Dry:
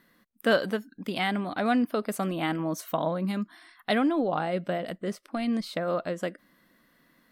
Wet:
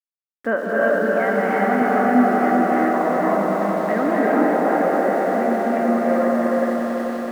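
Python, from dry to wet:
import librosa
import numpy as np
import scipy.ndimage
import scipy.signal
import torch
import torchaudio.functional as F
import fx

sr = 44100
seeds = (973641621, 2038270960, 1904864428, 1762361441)

p1 = fx.reverse_delay_fb(x, sr, ms=224, feedback_pct=57, wet_db=-4.5)
p2 = scipy.signal.sosfilt(scipy.signal.ellip(3, 1.0, 40, [220.0, 1900.0], 'bandpass', fs=sr, output='sos'), p1)
p3 = fx.level_steps(p2, sr, step_db=19)
p4 = p2 + (p3 * librosa.db_to_amplitude(-0.5))
p5 = np.where(np.abs(p4) >= 10.0 ** (-43.0 / 20.0), p4, 0.0)
p6 = p5 + fx.echo_swell(p5, sr, ms=94, loudest=5, wet_db=-10.5, dry=0)
y = fx.rev_gated(p6, sr, seeds[0], gate_ms=410, shape='rising', drr_db=-3.5)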